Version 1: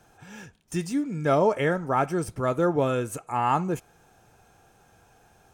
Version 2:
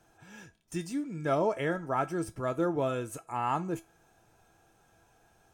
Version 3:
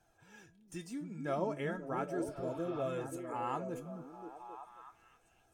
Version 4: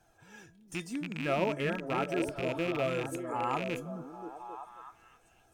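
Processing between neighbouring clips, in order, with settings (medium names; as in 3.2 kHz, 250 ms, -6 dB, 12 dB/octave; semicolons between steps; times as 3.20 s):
feedback comb 330 Hz, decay 0.2 s, harmonics all, mix 70%; trim +2 dB
flange 0.37 Hz, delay 1.2 ms, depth 4.5 ms, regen +51%; spectral replace 2.28–2.83 s, 720–5400 Hz both; repeats whose band climbs or falls 267 ms, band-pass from 200 Hz, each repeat 0.7 oct, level -1 dB; trim -3.5 dB
rattle on loud lows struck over -43 dBFS, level -32 dBFS; trim +5 dB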